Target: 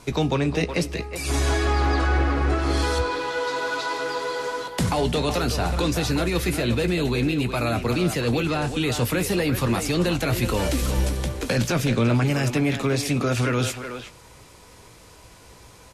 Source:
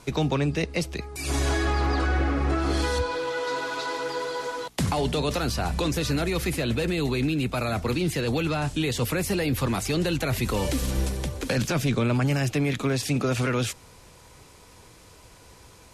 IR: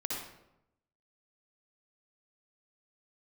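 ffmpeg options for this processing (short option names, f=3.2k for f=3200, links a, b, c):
-filter_complex "[0:a]asplit=2[a][b];[b]adelay=17,volume=-11.5dB[c];[a][c]amix=inputs=2:normalize=0,asplit=2[d][e];[e]adelay=370,highpass=300,lowpass=3.4k,asoftclip=type=hard:threshold=-22dB,volume=-7dB[f];[d][f]amix=inputs=2:normalize=0,asplit=2[g][h];[1:a]atrim=start_sample=2205[i];[h][i]afir=irnorm=-1:irlink=0,volume=-23.5dB[j];[g][j]amix=inputs=2:normalize=0,volume=1.5dB"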